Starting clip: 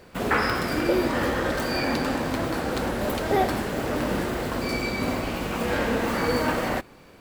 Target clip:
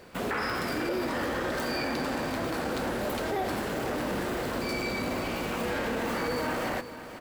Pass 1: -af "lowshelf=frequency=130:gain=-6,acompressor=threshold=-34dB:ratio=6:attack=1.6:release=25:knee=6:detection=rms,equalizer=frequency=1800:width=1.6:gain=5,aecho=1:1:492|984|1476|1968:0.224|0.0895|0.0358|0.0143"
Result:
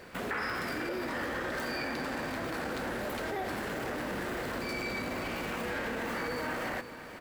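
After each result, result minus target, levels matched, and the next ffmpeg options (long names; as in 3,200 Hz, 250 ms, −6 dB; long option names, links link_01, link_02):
downward compressor: peak gain reduction +6 dB; 2,000 Hz band +2.5 dB
-af "lowshelf=frequency=130:gain=-6,acompressor=threshold=-27dB:ratio=6:attack=1.6:release=25:knee=6:detection=rms,equalizer=frequency=1800:width=1.6:gain=5,aecho=1:1:492|984|1476|1968:0.224|0.0895|0.0358|0.0143"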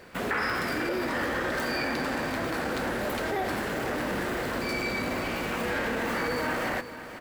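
2,000 Hz band +2.5 dB
-af "lowshelf=frequency=130:gain=-6,acompressor=threshold=-27dB:ratio=6:attack=1.6:release=25:knee=6:detection=rms,aecho=1:1:492|984|1476|1968:0.224|0.0895|0.0358|0.0143"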